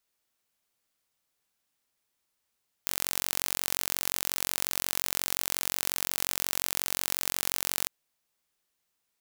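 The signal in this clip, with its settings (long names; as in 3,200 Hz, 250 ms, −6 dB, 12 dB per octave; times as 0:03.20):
impulse train 45.6 per second, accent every 0, −2 dBFS 5.02 s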